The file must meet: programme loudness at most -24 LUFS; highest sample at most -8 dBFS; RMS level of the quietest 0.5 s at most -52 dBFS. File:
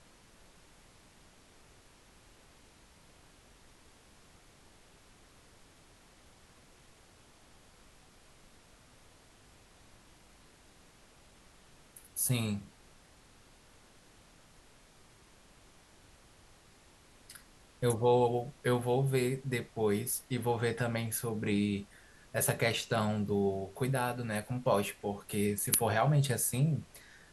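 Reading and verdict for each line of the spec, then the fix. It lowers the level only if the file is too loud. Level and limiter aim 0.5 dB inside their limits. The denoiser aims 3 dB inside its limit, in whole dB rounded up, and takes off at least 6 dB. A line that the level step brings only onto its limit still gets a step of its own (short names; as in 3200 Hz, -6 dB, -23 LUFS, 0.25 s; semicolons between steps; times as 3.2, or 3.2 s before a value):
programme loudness -32.0 LUFS: OK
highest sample -12.0 dBFS: OK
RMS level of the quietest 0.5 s -60 dBFS: OK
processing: none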